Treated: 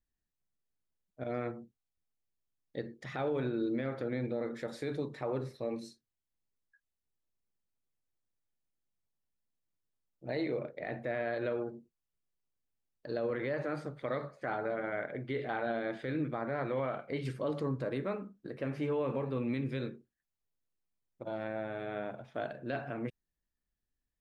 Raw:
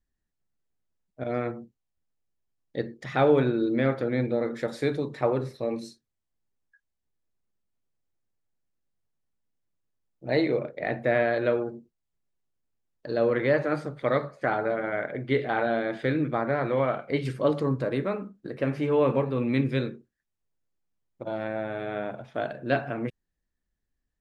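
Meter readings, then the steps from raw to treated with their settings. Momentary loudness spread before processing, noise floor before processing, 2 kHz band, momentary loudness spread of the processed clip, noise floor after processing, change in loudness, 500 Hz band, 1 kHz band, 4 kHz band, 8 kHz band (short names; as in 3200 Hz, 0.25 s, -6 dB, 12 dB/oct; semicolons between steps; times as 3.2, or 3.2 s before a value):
11 LU, -82 dBFS, -9.5 dB, 9 LU, under -85 dBFS, -9.5 dB, -9.5 dB, -9.5 dB, -9.5 dB, n/a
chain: limiter -19 dBFS, peak gain reduction 9 dB; gain -6.5 dB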